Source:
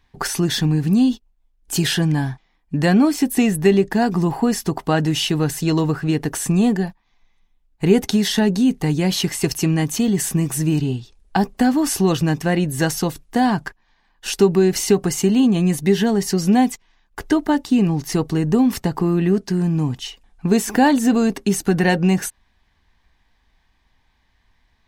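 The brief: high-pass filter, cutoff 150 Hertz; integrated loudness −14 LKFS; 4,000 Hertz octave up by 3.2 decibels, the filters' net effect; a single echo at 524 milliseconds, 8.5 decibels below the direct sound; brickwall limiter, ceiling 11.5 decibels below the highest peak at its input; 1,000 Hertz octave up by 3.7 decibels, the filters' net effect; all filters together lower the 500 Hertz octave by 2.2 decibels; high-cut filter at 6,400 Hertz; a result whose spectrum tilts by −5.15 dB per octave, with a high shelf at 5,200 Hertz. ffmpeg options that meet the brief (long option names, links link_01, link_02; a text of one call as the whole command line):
ffmpeg -i in.wav -af "highpass=150,lowpass=6400,equalizer=frequency=500:width_type=o:gain=-4.5,equalizer=frequency=1000:width_type=o:gain=7,equalizer=frequency=4000:width_type=o:gain=6.5,highshelf=frequency=5200:gain=-4.5,alimiter=limit=-12.5dB:level=0:latency=1,aecho=1:1:524:0.376,volume=8.5dB" out.wav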